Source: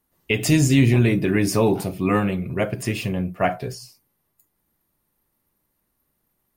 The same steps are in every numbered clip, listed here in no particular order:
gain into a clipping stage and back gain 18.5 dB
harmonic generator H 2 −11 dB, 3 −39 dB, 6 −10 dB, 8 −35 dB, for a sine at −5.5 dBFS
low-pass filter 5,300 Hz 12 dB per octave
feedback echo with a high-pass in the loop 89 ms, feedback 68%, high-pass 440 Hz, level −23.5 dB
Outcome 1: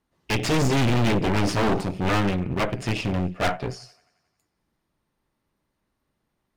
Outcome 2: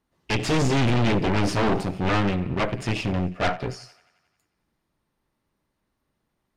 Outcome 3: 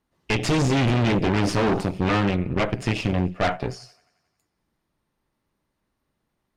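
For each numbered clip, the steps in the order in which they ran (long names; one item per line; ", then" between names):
feedback echo with a high-pass in the loop, then harmonic generator, then low-pass filter, then gain into a clipping stage and back
harmonic generator, then feedback echo with a high-pass in the loop, then gain into a clipping stage and back, then low-pass filter
feedback echo with a high-pass in the loop, then gain into a clipping stage and back, then harmonic generator, then low-pass filter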